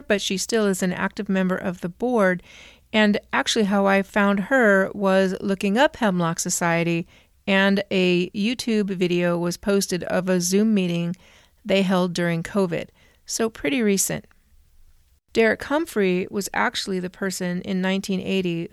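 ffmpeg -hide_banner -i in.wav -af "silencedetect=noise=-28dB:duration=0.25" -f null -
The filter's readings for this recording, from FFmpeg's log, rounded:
silence_start: 2.37
silence_end: 2.93 | silence_duration: 0.56
silence_start: 7.02
silence_end: 7.48 | silence_duration: 0.46
silence_start: 11.14
silence_end: 11.67 | silence_duration: 0.53
silence_start: 12.83
silence_end: 13.30 | silence_duration: 0.47
silence_start: 14.19
silence_end: 15.35 | silence_duration: 1.16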